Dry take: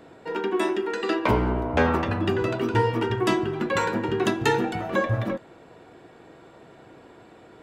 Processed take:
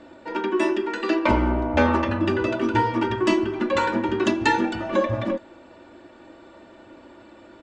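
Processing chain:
low-pass filter 7,400 Hz 24 dB per octave
comb filter 3.4 ms, depth 82%

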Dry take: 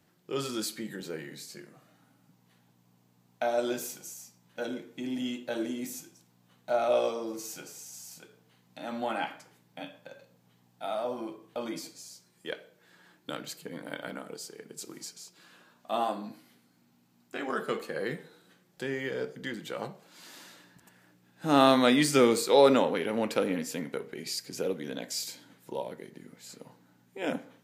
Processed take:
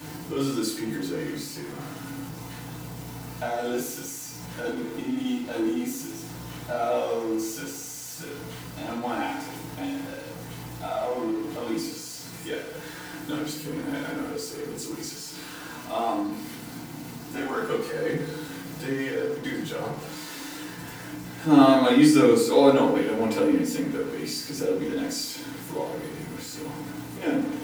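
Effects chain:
converter with a step at zero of −35 dBFS
feedback delay network reverb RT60 0.54 s, low-frequency decay 1.45×, high-frequency decay 0.6×, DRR −8.5 dB
level −8 dB

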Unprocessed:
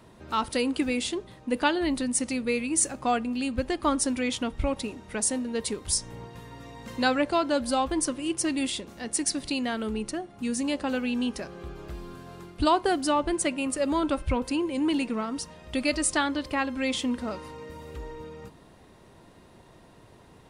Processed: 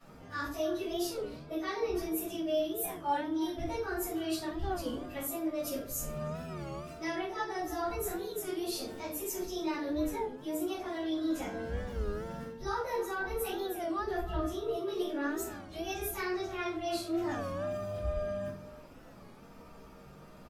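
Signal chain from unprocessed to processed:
phase-vocoder pitch shift without resampling +4.5 semitones
reversed playback
downward compressor 5 to 1, threshold −36 dBFS, peak gain reduction 13.5 dB
reversed playback
far-end echo of a speakerphone 310 ms, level −15 dB
rectangular room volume 300 cubic metres, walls furnished, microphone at 6.6 metres
wow of a warped record 33 1/3 rpm, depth 160 cents
level −8 dB

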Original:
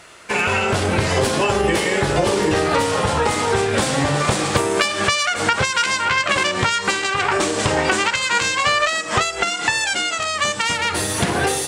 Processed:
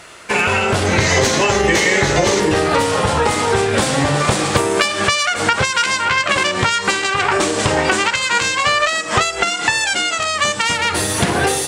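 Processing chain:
in parallel at −2 dB: speech leveller
0:00.86–0:02.40: on the sum: thirty-one-band graphic EQ 2,000 Hz +8 dB, 4,000 Hz +5 dB, 6,300 Hz +11 dB, 10,000 Hz −7 dB
level −2.5 dB

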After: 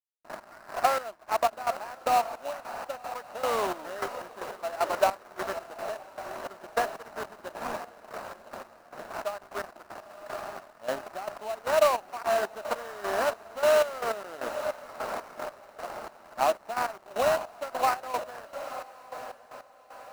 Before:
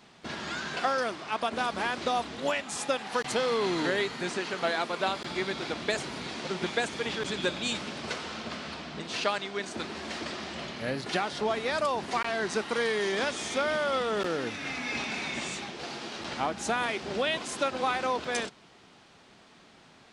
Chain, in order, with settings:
loudspeaker in its box 250–4,400 Hz, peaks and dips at 620 Hz +8 dB, 1,600 Hz −5 dB, 3,200 Hz −7 dB
sample-rate reduction 3,400 Hz, jitter 20%
dead-zone distortion −40.5 dBFS
flat-topped bell 1,000 Hz +8.5 dB
on a send: feedback delay with all-pass diffusion 980 ms, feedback 40%, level −11 dB
on the sum: gate pattern "x..x...xxx...x" 153 BPM −12 dB
level −2.5 dB

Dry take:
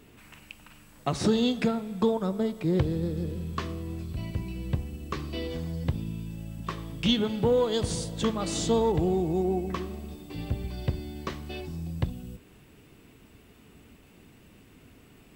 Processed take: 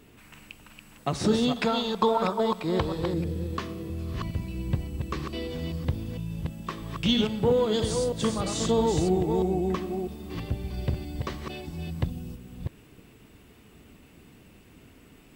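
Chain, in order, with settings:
delay that plays each chunk backwards 325 ms, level −5 dB
0:01.56–0:03.14: octave-band graphic EQ 125/250/1,000/4,000 Hz −7/−3/+11/+7 dB

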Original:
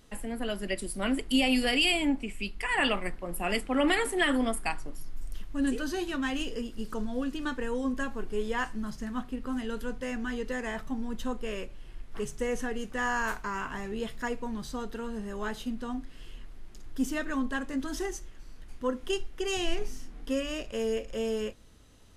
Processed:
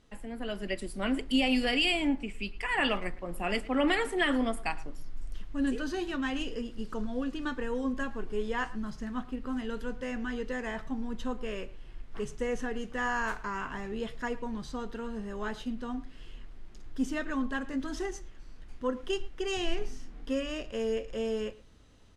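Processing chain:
high-frequency loss of the air 57 metres
far-end echo of a speakerphone 110 ms, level −19 dB
automatic gain control gain up to 4 dB
level −5 dB

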